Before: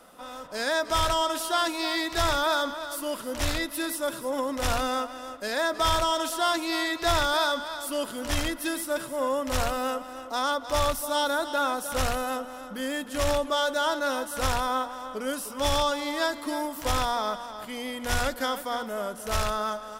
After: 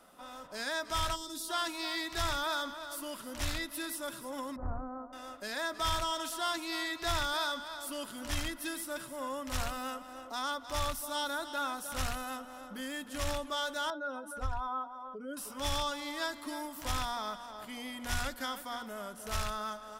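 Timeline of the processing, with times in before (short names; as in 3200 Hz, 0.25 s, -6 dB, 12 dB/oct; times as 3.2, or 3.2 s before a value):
1.15–1.49 spectral gain 500–3300 Hz -15 dB
4.56–5.13 Bessel low-pass 740 Hz, order 8
13.9–15.37 spectral contrast raised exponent 1.9
whole clip: notch 490 Hz, Q 12; dynamic EQ 520 Hz, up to -6 dB, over -38 dBFS, Q 0.88; gain -6.5 dB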